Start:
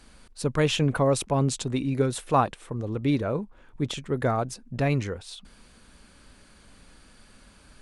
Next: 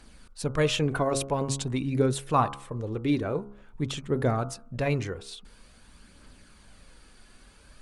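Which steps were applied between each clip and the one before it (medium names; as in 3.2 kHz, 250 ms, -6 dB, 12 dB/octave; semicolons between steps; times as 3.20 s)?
phaser 0.48 Hz, delay 3 ms, feedback 32%; de-hum 68.47 Hz, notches 22; trim -1.5 dB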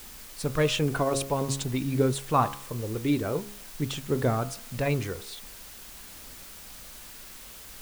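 added noise white -46 dBFS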